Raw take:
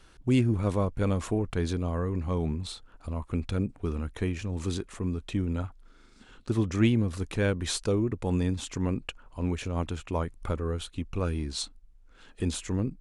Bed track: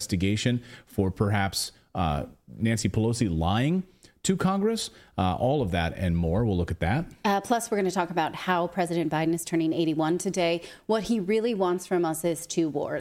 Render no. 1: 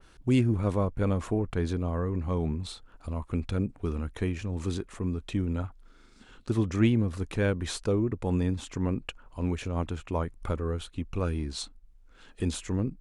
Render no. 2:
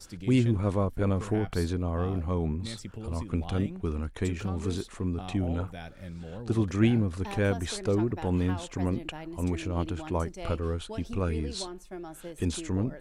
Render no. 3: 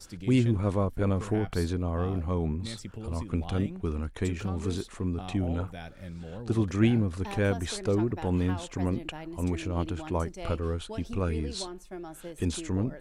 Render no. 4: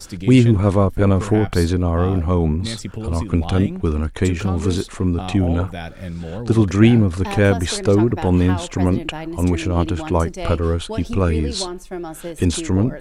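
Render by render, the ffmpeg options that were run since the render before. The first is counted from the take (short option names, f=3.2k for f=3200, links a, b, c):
-af "adynamicequalizer=threshold=0.00316:dfrequency=2500:dqfactor=0.7:tfrequency=2500:tqfactor=0.7:attack=5:release=100:ratio=0.375:range=3.5:mode=cutabove:tftype=highshelf"
-filter_complex "[1:a]volume=-15.5dB[a];[0:a][a]amix=inputs=2:normalize=0"
-af anull
-af "volume=11.5dB,alimiter=limit=-1dB:level=0:latency=1"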